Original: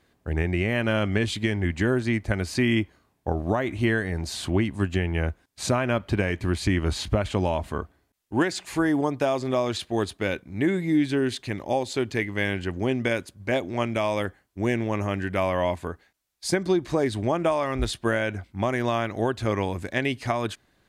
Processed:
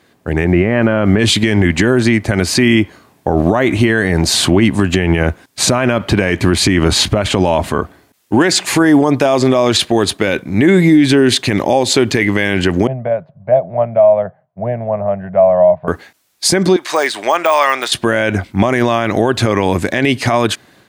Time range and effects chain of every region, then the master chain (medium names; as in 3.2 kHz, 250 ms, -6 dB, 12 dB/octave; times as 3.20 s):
0.44–1.18 s: low-pass 1.6 kHz + added noise brown -49 dBFS
12.87–15.88 s: two resonant band-passes 310 Hz, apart 2.1 oct + distance through air 350 m
16.76–17.92 s: de-esser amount 100% + high-pass 950 Hz
whole clip: high-pass 120 Hz 12 dB/octave; level rider gain up to 9.5 dB; loudness maximiser +13.5 dB; trim -1 dB